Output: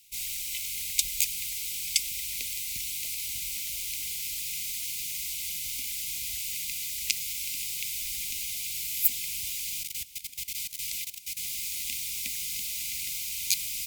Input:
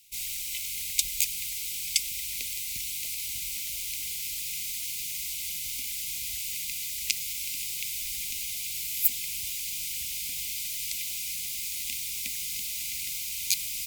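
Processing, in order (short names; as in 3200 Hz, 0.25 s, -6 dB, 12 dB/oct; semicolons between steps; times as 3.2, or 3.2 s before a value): 9.83–11.37 level quantiser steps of 17 dB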